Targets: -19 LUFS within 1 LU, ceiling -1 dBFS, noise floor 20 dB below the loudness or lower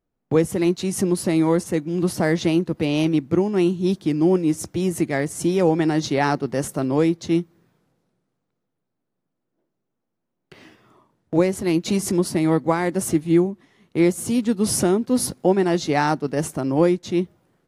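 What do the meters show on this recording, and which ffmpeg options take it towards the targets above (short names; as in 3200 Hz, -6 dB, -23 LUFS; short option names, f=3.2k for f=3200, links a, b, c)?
loudness -21.0 LUFS; peak -5.0 dBFS; loudness target -19.0 LUFS
-> -af "volume=2dB"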